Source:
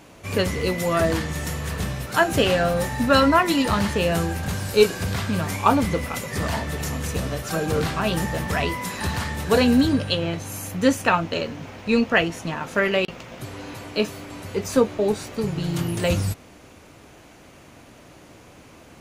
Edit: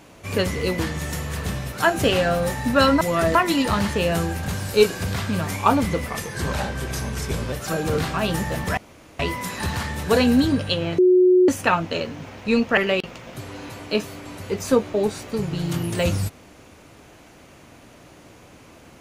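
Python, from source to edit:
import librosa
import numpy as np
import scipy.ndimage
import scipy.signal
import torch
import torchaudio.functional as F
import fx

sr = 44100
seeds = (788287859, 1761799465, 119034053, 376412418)

y = fx.edit(x, sr, fx.move(start_s=0.79, length_s=0.34, to_s=3.35),
    fx.speed_span(start_s=6.08, length_s=1.27, speed=0.88),
    fx.insert_room_tone(at_s=8.6, length_s=0.42),
    fx.bleep(start_s=10.39, length_s=0.5, hz=365.0, db=-11.0),
    fx.cut(start_s=12.18, length_s=0.64), tone=tone)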